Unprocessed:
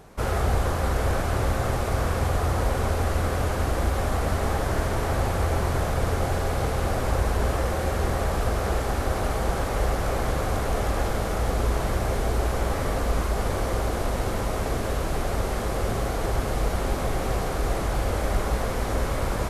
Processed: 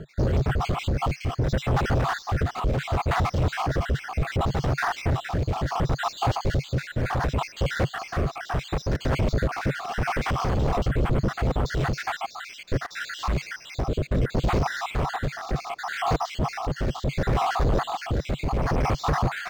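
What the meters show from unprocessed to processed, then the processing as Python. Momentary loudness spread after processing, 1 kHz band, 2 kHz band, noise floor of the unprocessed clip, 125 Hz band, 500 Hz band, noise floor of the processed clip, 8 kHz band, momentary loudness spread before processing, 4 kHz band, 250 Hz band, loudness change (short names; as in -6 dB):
5 LU, +1.0 dB, +1.5 dB, -28 dBFS, +0.5 dB, -2.5 dB, -45 dBFS, -6.5 dB, 2 LU, +1.0 dB, +1.0 dB, -0.5 dB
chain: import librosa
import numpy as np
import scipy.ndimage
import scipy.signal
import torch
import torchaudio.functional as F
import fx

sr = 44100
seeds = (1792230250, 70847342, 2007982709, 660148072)

p1 = fx.spec_dropout(x, sr, seeds[0], share_pct=67)
p2 = scipy.signal.sosfilt(scipy.signal.butter(4, 8100.0, 'lowpass', fs=sr, output='sos'), p1)
p3 = fx.peak_eq(p2, sr, hz=140.0, db=10.0, octaves=0.75)
p4 = fx.over_compress(p3, sr, threshold_db=-28.0, ratio=-1.0)
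p5 = p3 + (p4 * 10.0 ** (2.0 / 20.0))
p6 = np.clip(p5, -10.0 ** (-21.0 / 20.0), 10.0 ** (-21.0 / 20.0))
p7 = p6 + fx.echo_wet_highpass(p6, sr, ms=143, feedback_pct=44, hz=2100.0, wet_db=-23.5, dry=0)
p8 = fx.rotary_switch(p7, sr, hz=7.5, then_hz=0.7, switch_at_s=0.45)
p9 = np.interp(np.arange(len(p8)), np.arange(len(p8))[::4], p8[::4])
y = p9 * 10.0 ** (3.0 / 20.0)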